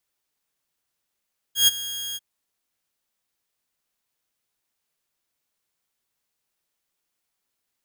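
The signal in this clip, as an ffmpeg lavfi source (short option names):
-f lavfi -i "aevalsrc='0.335*(2*mod(3270*t,1)-1)':d=0.643:s=44100,afade=t=in:d=0.125,afade=t=out:st=0.125:d=0.023:silence=0.141,afade=t=out:st=0.61:d=0.033"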